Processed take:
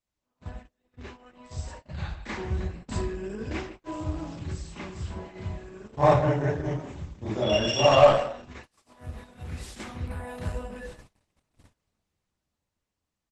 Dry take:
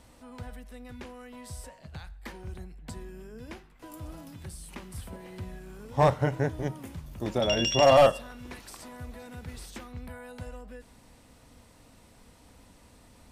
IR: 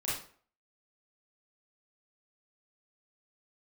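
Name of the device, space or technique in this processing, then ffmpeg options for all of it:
speakerphone in a meeting room: -filter_complex "[1:a]atrim=start_sample=2205[a];[0:a][a]afir=irnorm=-1:irlink=0,asplit=2[b][c];[c]adelay=150,highpass=300,lowpass=3.4k,asoftclip=type=hard:threshold=-9.5dB,volume=-13dB[d];[b][d]amix=inputs=2:normalize=0,dynaudnorm=f=360:g=11:m=10dB,agate=range=-33dB:threshold=-37dB:ratio=16:detection=peak,volume=-3.5dB" -ar 48000 -c:a libopus -b:a 12k

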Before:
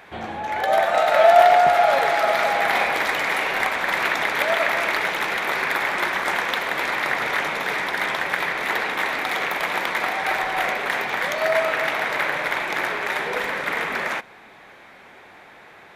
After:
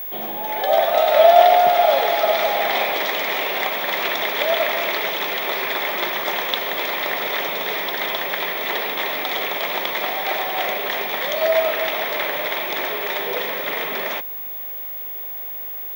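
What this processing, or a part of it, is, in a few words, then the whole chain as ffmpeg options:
old television with a line whistle: -filter_complex "[0:a]asettb=1/sr,asplit=3[a][b][c];[a]atrim=end=7.294[d];[b]atrim=start=7.29:end=9.2,asetpts=PTS-STARTPTS,afade=t=in:d=0.004:c=qsin,afade=t=out:st=1.906:d=0.004:c=qsin,lowpass=11k[e];[c]atrim=start=9.196[f];[d][e]acrossfade=d=0.004:c1=hsin:c2=qsin[g];[g][f]acrossfade=d=0.004:c1=qsin:c2=hsin,highpass=f=160:w=0.5412,highpass=f=160:w=1.3066,equalizer=f=400:t=q:w=4:g=5,equalizer=f=610:t=q:w=4:g=6,equalizer=f=1.5k:t=q:w=4:g=-7,equalizer=f=3.4k:t=q:w=4:g=9,equalizer=f=5.7k:t=q:w=4:g=4,lowpass=f=7k:w=0.5412,lowpass=f=7k:w=1.3066,aeval=exprs='val(0)+0.0501*sin(2*PI*15625*n/s)':c=same,volume=-1.5dB"

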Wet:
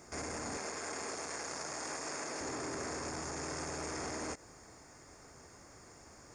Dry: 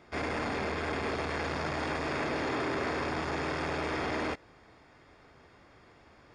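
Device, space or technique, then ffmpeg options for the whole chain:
over-bright horn tweeter: -filter_complex "[0:a]asettb=1/sr,asplit=3[a][b][c];[a]atrim=end=0.574[d];[b]atrim=start=0.57:end=2.41,asetpts=PTS-STARTPTS,afade=t=in:d=0.004:c=qsin,afade=t=out:st=1.836:d=0.004:c=qsin,highpass=f=460:p=1[e];[c]atrim=start=2.406[f];[d][e]acrossfade=d=0.004:c1=hsin:c2=qsin[g];[g][f]acrossfade=d=0.004:c1=qsin:c2=hsin,highshelf=f=4.8k:t=q:w=3:g=12.5,alimiter=level_in=8dB:limit=-24dB:level=0:latency=1:release=78,volume=-8dB,volume=1dB"

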